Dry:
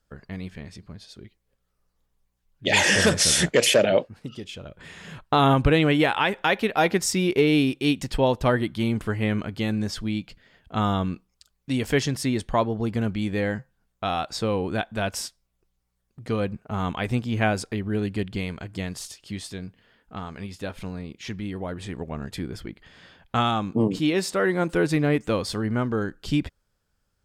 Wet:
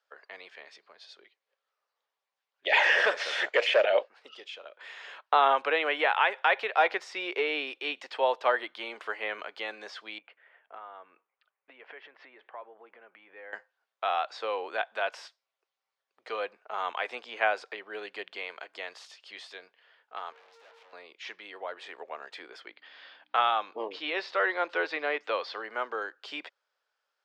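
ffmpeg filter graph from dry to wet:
-filter_complex "[0:a]asettb=1/sr,asplit=3[s0][s1][s2];[s0]atrim=end=10.184[s3];[s1]atrim=start=10.18:end=13.53,asetpts=PTS-STARTPTS,afade=t=in:d=0.004:c=qsin,afade=t=out:st=3.346:d=0.004:c=qsin,lowpass=f=2400:w=0.5412,lowpass=f=2400:w=1.3066,acompressor=threshold=0.0178:ratio=12:attack=3.2:release=140:knee=1:detection=peak[s4];[s2]atrim=start=13.526[s5];[s3][s4]acrossfade=d=0.004:c1=hsin:c2=qsin[s6];[s6][s5]acrossfade=d=0.004:c1=qsin:c2=hsin,asettb=1/sr,asplit=3[s7][s8][s9];[s7]atrim=end=20.324[s10];[s8]atrim=start=20.32:end=20.93,asetpts=PTS-STARTPTS,afade=t=in:d=0.004:c=qsin,afade=t=out:st=0.606:d=0.004:c=qsin,aeval=exprs='val(0)+0.0126*sin(2*PI*460*n/s)':c=same,aeval=exprs='(tanh(316*val(0)+0.65)-tanh(0.65))/316':c=same[s11];[s9]atrim=start=20.926[s12];[s10][s11]acrossfade=d=0.004:c1=hsin:c2=qsin[s13];[s13][s12]acrossfade=d=0.004:c1=qsin:c2=hsin,asettb=1/sr,asplit=3[s14][s15][s16];[s14]atrim=end=22.664[s17];[s15]atrim=start=22.66:end=25.62,asetpts=PTS-STARTPTS,afade=t=in:d=0.004:c=qsin,afade=t=out:st=2.956:d=0.004:c=qsin,highshelf=f=6500:t=q:w=1.5:g=-12,aeval=exprs='val(0)+0.00708*(sin(2*PI*60*n/s)+sin(2*PI*2*60*n/s)/2+sin(2*PI*3*60*n/s)/3+sin(2*PI*4*60*n/s)/4+sin(2*PI*5*60*n/s)/5)':c=same[s18];[s16]atrim=start=25.616[s19];[s17][s18]acrossfade=d=0.004:c1=hsin:c2=qsin[s20];[s20][s19]acrossfade=d=0.004:c1=qsin:c2=hsin,highpass=f=410:w=0.5412,highpass=f=410:w=1.3066,acrossover=split=3000[s21][s22];[s22]acompressor=threshold=0.00891:ratio=4:attack=1:release=60[s23];[s21][s23]amix=inputs=2:normalize=0,acrossover=split=540 5200:gain=0.2 1 0.0708[s24][s25][s26];[s24][s25][s26]amix=inputs=3:normalize=0"

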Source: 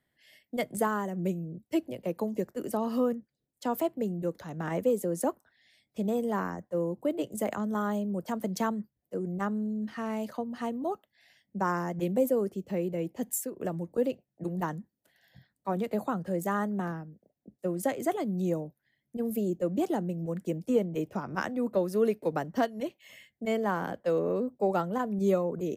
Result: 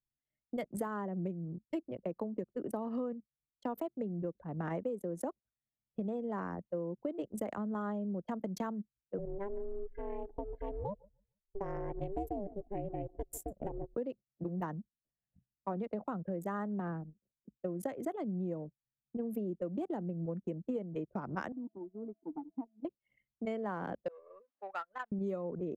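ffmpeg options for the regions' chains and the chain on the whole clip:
-filter_complex "[0:a]asettb=1/sr,asplit=3[s0][s1][s2];[s0]atrim=end=9.184[s3];[s1]atrim=start=9.18:end=13.95,asetpts=PTS-STARTPTS,afade=t=in:d=0.004:c=qsin,afade=t=out:st=4.766:d=0.004:c=qsin,asuperstop=centerf=1200:order=4:qfactor=1.2,aeval=exprs='val(0)*sin(2*PI*200*n/s)':c=same,aecho=1:1:149|298|447:0.158|0.0618|0.0241,atrim=end_sample=210357[s4];[s2]atrim=start=13.946[s5];[s3][s4]acrossfade=d=0.004:c1=hsin:c2=qsin[s6];[s6][s5]acrossfade=d=0.004:c1=qsin:c2=hsin,asettb=1/sr,asplit=3[s7][s8][s9];[s7]atrim=end=21.524[s10];[s8]atrim=start=21.52:end=22.85,asetpts=PTS-STARTPTS,afade=t=in:d=0.004:c=qsin,afade=t=out:st=1.326:d=0.004:c=qsin,equalizer=f=2600:w=0.86:g=-7.5,aeval=exprs='val(0)+0.0282*sin(2*PI*660*n/s)':c=same,asplit=3[s11][s12][s13];[s11]bandpass=f=300:t=q:w=8,volume=1[s14];[s12]bandpass=f=870:t=q:w=8,volume=0.501[s15];[s13]bandpass=f=2240:t=q:w=8,volume=0.355[s16];[s14][s15][s16]amix=inputs=3:normalize=0[s17];[s9]atrim=start=22.846[s18];[s10][s17]acrossfade=d=0.004:c1=hsin:c2=qsin[s19];[s19][s18]acrossfade=d=0.004:c1=qsin:c2=hsin,asettb=1/sr,asplit=3[s20][s21][s22];[s20]atrim=end=24.084[s23];[s21]atrim=start=24.08:end=25.12,asetpts=PTS-STARTPTS,afade=t=in:d=0.004:c=qsin,afade=t=out:st=1.036:d=0.004:c=qsin,aeval=exprs='val(0)+0.5*0.00596*sgn(val(0))':c=same,highpass=1500,adynamicequalizer=threshold=0.00316:dfrequency=1900:dqfactor=0.89:tfrequency=1900:tqfactor=0.89:attack=5:release=100:ratio=0.375:range=2:mode=boostabove:tftype=bell[s24];[s22]atrim=start=25.116[s25];[s23][s24]acrossfade=d=0.004:c1=hsin:c2=qsin[s26];[s26][s25]acrossfade=d=0.004:c1=qsin:c2=hsin,anlmdn=0.631,highshelf=f=2800:g=-10,acompressor=threshold=0.02:ratio=6"

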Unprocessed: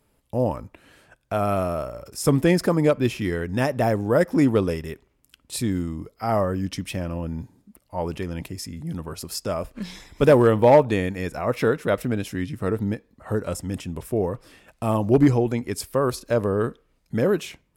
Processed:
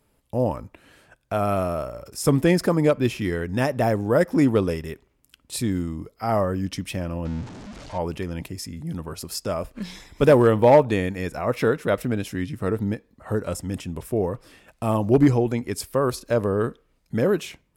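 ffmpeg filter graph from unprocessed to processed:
-filter_complex "[0:a]asettb=1/sr,asplit=3[s0][s1][s2];[s0]atrim=end=7.254[s3];[s1]atrim=start=7.25:end=7.98,asetpts=PTS-STARTPTS,afade=t=in:d=0.004:c=qsin,afade=t=out:st=0.726:d=0.004:c=qsin,aeval=exprs='val(0)+0.5*0.02*sgn(val(0))':c=same,lowpass=f=6900:w=0.5412,lowpass=f=6900:w=1.3066[s4];[s2]atrim=start=7.976[s5];[s3][s4]acrossfade=d=0.004:c1=hsin:c2=qsin[s6];[s6][s5]acrossfade=d=0.004:c1=qsin:c2=hsin"

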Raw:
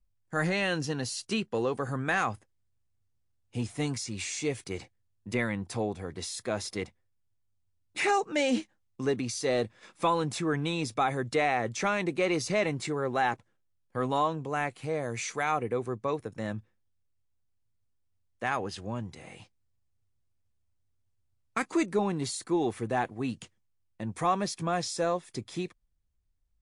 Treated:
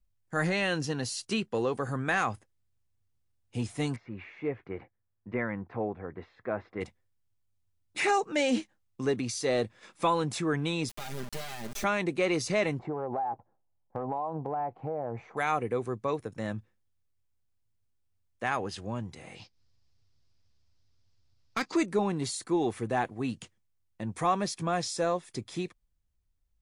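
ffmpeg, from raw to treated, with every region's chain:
-filter_complex "[0:a]asettb=1/sr,asplit=3[s0][s1][s2];[s0]atrim=end=3.964[s3];[s1]atrim=start=3.96:end=6.81,asetpts=PTS-STARTPTS,afade=t=in:d=0.004:c=qsin,afade=t=out:st=2.846:d=0.004:c=qsin,lowpass=f=1900:w=0.5412,lowpass=f=1900:w=1.3066,lowshelf=f=190:g=-6[s4];[s2]atrim=start=6.806[s5];[s3][s4]acrossfade=d=0.004:c1=hsin:c2=qsin[s6];[s6][s5]acrossfade=d=0.004:c1=qsin:c2=hsin,asettb=1/sr,asplit=3[s7][s8][s9];[s7]atrim=end=10.894[s10];[s8]atrim=start=10.89:end=11.84,asetpts=PTS-STARTPTS,afade=t=in:d=0.004:c=qsin,afade=t=out:st=0.946:d=0.004:c=qsin,acrossover=split=260|3000[s11][s12][s13];[s12]acompressor=threshold=0.00708:ratio=3:attack=3.2:release=140:knee=2.83:detection=peak[s14];[s11][s14][s13]amix=inputs=3:normalize=0,acrusher=bits=4:dc=4:mix=0:aa=0.000001,aecho=1:1:5:0.67,atrim=end_sample=41895[s15];[s9]atrim=start=11.836[s16];[s10][s15]acrossfade=d=0.004:c1=hsin:c2=qsin[s17];[s17][s16]acrossfade=d=0.004:c1=qsin:c2=hsin,asettb=1/sr,asplit=3[s18][s19][s20];[s18]atrim=end=12.794[s21];[s19]atrim=start=12.79:end=15.37,asetpts=PTS-STARTPTS,afade=t=in:d=0.004:c=qsin,afade=t=out:st=2.576:d=0.004:c=qsin,lowpass=f=810:t=q:w=4.4,acompressor=threshold=0.0398:ratio=16:attack=3.2:release=140:knee=1:detection=peak[s22];[s20]atrim=start=15.366[s23];[s21][s22]acrossfade=d=0.004:c1=hsin:c2=qsin[s24];[s24][s23]acrossfade=d=0.004:c1=qsin:c2=hsin,asettb=1/sr,asplit=3[s25][s26][s27];[s25]atrim=end=19.354[s28];[s26]atrim=start=19.35:end=21.76,asetpts=PTS-STARTPTS,afade=t=in:d=0.004:c=qsin,afade=t=out:st=2.406:d=0.004:c=qsin,lowpass=f=5000:t=q:w=3.8,asoftclip=type=hard:threshold=0.075,acompressor=mode=upward:threshold=0.00126:ratio=2.5:attack=3.2:release=140:knee=2.83:detection=peak[s29];[s27]atrim=start=21.756[s30];[s28][s29]acrossfade=d=0.004:c1=hsin:c2=qsin[s31];[s31][s30]acrossfade=d=0.004:c1=qsin:c2=hsin"

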